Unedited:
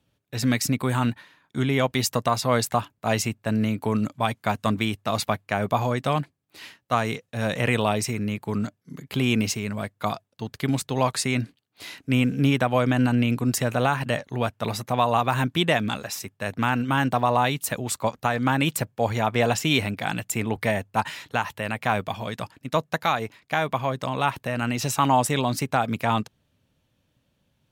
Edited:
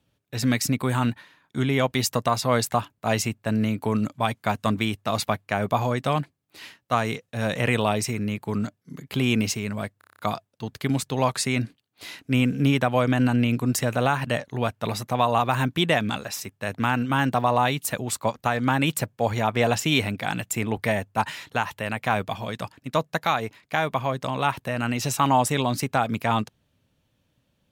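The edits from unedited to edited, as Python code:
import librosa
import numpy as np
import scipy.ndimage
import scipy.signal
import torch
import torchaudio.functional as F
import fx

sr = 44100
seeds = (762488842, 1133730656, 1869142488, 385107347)

y = fx.edit(x, sr, fx.stutter(start_s=9.98, slice_s=0.03, count=8), tone=tone)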